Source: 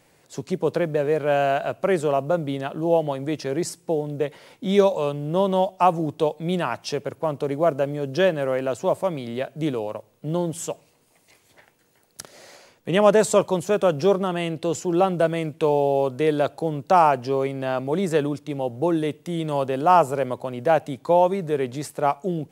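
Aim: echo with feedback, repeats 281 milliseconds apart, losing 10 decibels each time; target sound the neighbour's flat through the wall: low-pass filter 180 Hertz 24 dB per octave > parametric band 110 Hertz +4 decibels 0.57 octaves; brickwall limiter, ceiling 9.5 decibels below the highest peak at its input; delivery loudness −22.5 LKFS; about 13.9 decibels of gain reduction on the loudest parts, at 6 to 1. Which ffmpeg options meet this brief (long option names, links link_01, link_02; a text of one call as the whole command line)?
ffmpeg -i in.wav -af "acompressor=threshold=-26dB:ratio=6,alimiter=limit=-23dB:level=0:latency=1,lowpass=frequency=180:width=0.5412,lowpass=frequency=180:width=1.3066,equalizer=frequency=110:width_type=o:width=0.57:gain=4,aecho=1:1:281|562|843|1124:0.316|0.101|0.0324|0.0104,volume=18.5dB" out.wav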